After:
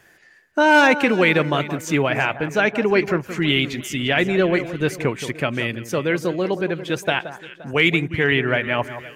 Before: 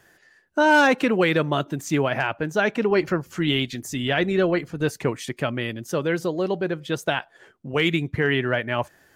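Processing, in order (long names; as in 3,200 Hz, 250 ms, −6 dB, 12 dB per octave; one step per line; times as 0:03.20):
parametric band 2,300 Hz +6.5 dB 0.5 octaves
delay that swaps between a low-pass and a high-pass 174 ms, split 1,500 Hz, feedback 62%, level −11.5 dB
level +2 dB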